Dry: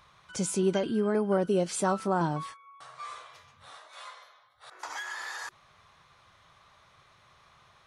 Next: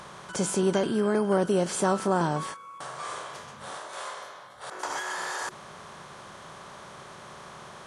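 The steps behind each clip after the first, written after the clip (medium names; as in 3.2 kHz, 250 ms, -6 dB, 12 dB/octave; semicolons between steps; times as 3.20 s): spectral levelling over time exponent 0.6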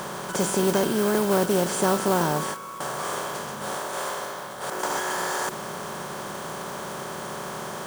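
spectral levelling over time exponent 0.6; modulation noise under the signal 13 dB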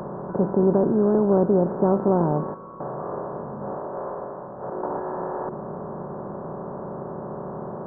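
Gaussian low-pass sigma 9.7 samples; trim +5 dB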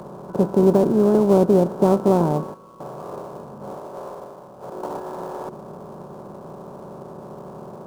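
dead-time distortion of 0.075 ms; upward expansion 1.5:1, over -36 dBFS; trim +4.5 dB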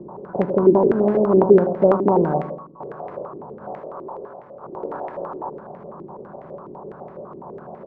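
feedback delay 88 ms, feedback 42%, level -8 dB; step-sequenced low-pass 12 Hz 340–2000 Hz; trim -4.5 dB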